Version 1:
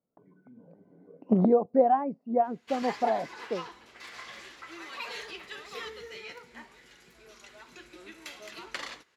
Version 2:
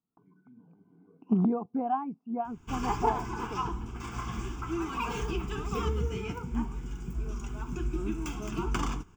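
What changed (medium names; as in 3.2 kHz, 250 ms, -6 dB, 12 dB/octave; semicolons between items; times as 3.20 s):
background: remove band-pass filter 3.4 kHz, Q 1; master: add static phaser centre 2.8 kHz, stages 8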